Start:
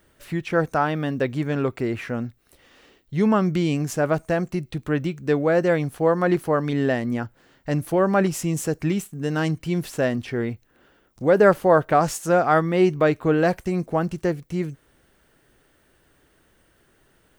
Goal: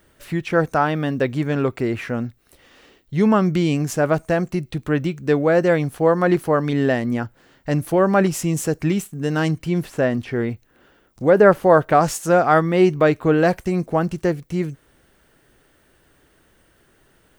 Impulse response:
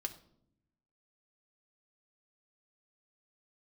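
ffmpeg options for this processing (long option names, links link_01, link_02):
-filter_complex "[0:a]asettb=1/sr,asplit=3[link_01][link_02][link_03];[link_01]atrim=end=9.654[link_04];[link_02]atrim=start=9.65:end=11.63,asetpts=PTS-STARTPTS,afade=type=in:duration=0.004:curve=qsin,afade=type=out:start_time=1.976:duration=0.004:curve=qsin,acrossover=split=2600[link_05][link_06];[link_06]acompressor=threshold=-45dB:ratio=4:attack=1:release=60[link_07];[link_05][link_07]amix=inputs=2:normalize=0[link_08];[link_03]atrim=start=11.626[link_09];[link_04][link_08]acrossfade=duration=0.004:curve1=hsin:curve2=qsin[link_10];[link_10][link_09]acrossfade=duration=0.004:curve1=qsin:curve2=hsin,volume=3dB"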